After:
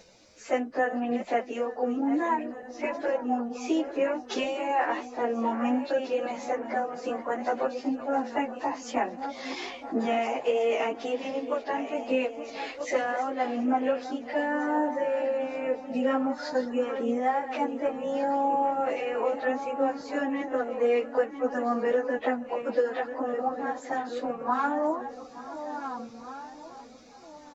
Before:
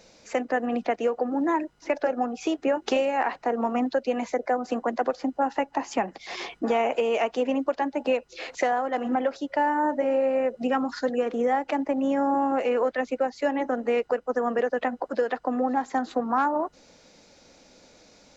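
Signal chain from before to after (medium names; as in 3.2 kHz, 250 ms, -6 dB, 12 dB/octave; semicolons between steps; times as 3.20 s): backward echo that repeats 580 ms, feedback 53%, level -11 dB; plain phase-vocoder stretch 1.5×; echo from a far wall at 150 m, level -17 dB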